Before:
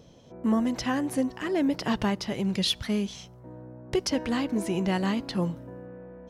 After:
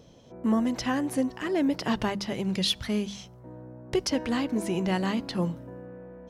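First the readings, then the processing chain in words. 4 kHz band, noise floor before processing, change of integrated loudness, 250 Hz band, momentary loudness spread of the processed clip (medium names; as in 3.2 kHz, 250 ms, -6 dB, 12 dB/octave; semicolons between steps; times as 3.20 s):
0.0 dB, -50 dBFS, -0.5 dB, -0.5 dB, 17 LU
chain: hum notches 50/100/150/200 Hz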